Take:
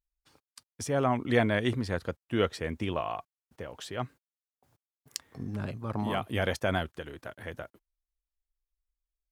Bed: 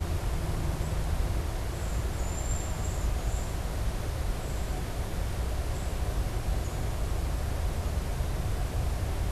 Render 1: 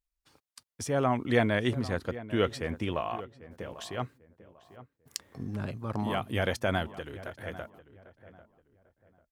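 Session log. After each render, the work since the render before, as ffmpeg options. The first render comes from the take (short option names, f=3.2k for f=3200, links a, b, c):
-filter_complex "[0:a]asplit=2[a][b];[b]adelay=795,lowpass=f=1.7k:p=1,volume=-15.5dB,asplit=2[c][d];[d]adelay=795,lowpass=f=1.7k:p=1,volume=0.3,asplit=2[e][f];[f]adelay=795,lowpass=f=1.7k:p=1,volume=0.3[g];[a][c][e][g]amix=inputs=4:normalize=0"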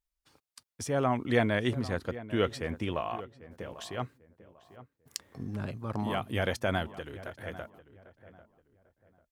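-af "volume=-1dB"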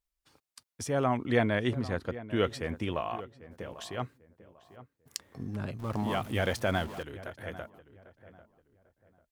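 -filter_complex "[0:a]asettb=1/sr,asplit=3[a][b][c];[a]atrim=end=1.174[d];[b]atrim=start=1.17:end=2.36,asetpts=PTS-STARTPTS,afade=t=in:d=0.004:c=qsin,afade=t=out:st=1.186:d=0.004:c=qsin,highshelf=f=5.6k:g=-6.5[e];[c]atrim=start=2.356[f];[d][e]acrossfade=d=0.004:c1=hsin:c2=qsin[g];[g][f]acrossfade=d=0.004:c1=qsin:c2=hsin,asettb=1/sr,asplit=3[h][i][j];[h]atrim=end=5.794[k];[i]atrim=start=5.79:end=7.03,asetpts=PTS-STARTPTS,afade=t=in:d=0.004:c=qsin,afade=t=out:st=1.236:d=0.004:c=qsin,aeval=exprs='val(0)+0.5*0.00794*sgn(val(0))':c=same[l];[j]atrim=start=7.026[m];[k][l]acrossfade=d=0.004:c1=hsin:c2=qsin[n];[n][m]acrossfade=d=0.004:c1=qsin:c2=hsin"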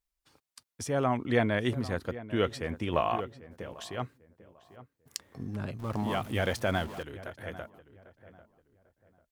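-filter_complex "[0:a]asettb=1/sr,asplit=3[a][b][c];[a]atrim=end=1.584[d];[b]atrim=start=1.58:end=2.13,asetpts=PTS-STARTPTS,afade=t=in:d=0.004:c=qsin,afade=t=out:st=0.546:d=0.004:c=qsin,highshelf=f=9.6k:g=12[e];[c]atrim=start=2.126[f];[d][e]acrossfade=d=0.004:c1=hsin:c2=qsin[g];[g][f]acrossfade=d=0.004:c1=qsin:c2=hsin,asplit=3[h][i][j];[h]afade=t=out:st=2.92:d=0.02[k];[i]acontrast=52,afade=t=in:st=2.92:d=0.02,afade=t=out:st=3.39:d=0.02[l];[j]afade=t=in:st=3.39:d=0.02[m];[k][l][m]amix=inputs=3:normalize=0"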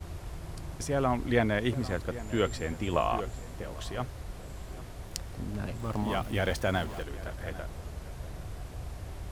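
-filter_complex "[1:a]volume=-10dB[a];[0:a][a]amix=inputs=2:normalize=0"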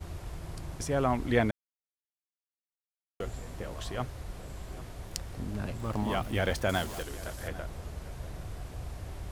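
-filter_complex "[0:a]asettb=1/sr,asplit=3[a][b][c];[a]atrim=end=6.694[d];[b]atrim=start=6.69:end=7.48,asetpts=PTS-STARTPTS,afade=t=in:d=0.004:c=qsin,afade=t=out:st=0.786:d=0.004:c=qsin,bass=f=250:g=-2,treble=f=4k:g=10[e];[c]atrim=start=7.476[f];[d][e]acrossfade=d=0.004:c1=hsin:c2=qsin[g];[g][f]acrossfade=d=0.004:c1=qsin:c2=hsin,asplit=3[h][i][j];[h]atrim=end=1.51,asetpts=PTS-STARTPTS,afade=t=out:st=1.506:d=0.004:c=hsin[k];[i]atrim=start=1.51:end=3.2,asetpts=PTS-STARTPTS,volume=0[l];[j]atrim=start=3.2,asetpts=PTS-STARTPTS,afade=t=in:d=0.004:c=hsin[m];[k][l][m]concat=n=3:v=0:a=1"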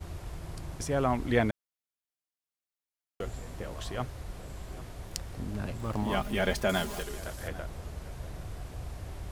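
-filter_complex "[0:a]asettb=1/sr,asplit=3[a][b][c];[a]atrim=end=6.124[d];[b]atrim=start=6.12:end=7.2,asetpts=PTS-STARTPTS,afade=t=in:d=0.004:c=qsin,afade=t=out:st=1.076:d=0.004:c=qsin,aecho=1:1:4.9:0.65,atrim=end_sample=47628[e];[c]atrim=start=7.196[f];[d][e]acrossfade=d=0.004:c1=hsin:c2=qsin[g];[g][f]acrossfade=d=0.004:c1=qsin:c2=hsin"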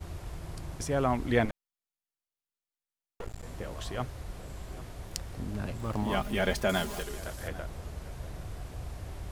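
-filter_complex "[0:a]asettb=1/sr,asplit=3[a][b][c];[a]atrim=end=1.454[d];[b]atrim=start=1.45:end=3.43,asetpts=PTS-STARTPTS,afade=t=in:d=0.004:c=qsin,afade=t=out:st=1.976:d=0.004:c=qsin,aeval=exprs='max(val(0),0)':c=same[e];[c]atrim=start=3.426[f];[d][e]acrossfade=d=0.004:c1=hsin:c2=qsin[g];[g][f]acrossfade=d=0.004:c1=qsin:c2=hsin"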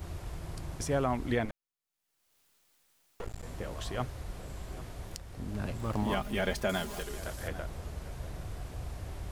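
-af "alimiter=limit=-17.5dB:level=0:latency=1:release=495,acompressor=mode=upward:threshold=-49dB:ratio=2.5"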